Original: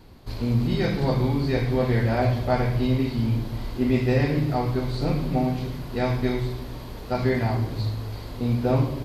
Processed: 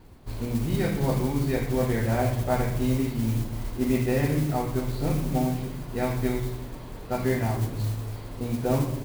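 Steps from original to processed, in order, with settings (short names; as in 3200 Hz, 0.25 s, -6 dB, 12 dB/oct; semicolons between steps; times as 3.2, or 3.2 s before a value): tone controls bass +2 dB, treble -11 dB; notches 60/120/180/240 Hz; modulation noise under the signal 19 dB; gain -2.5 dB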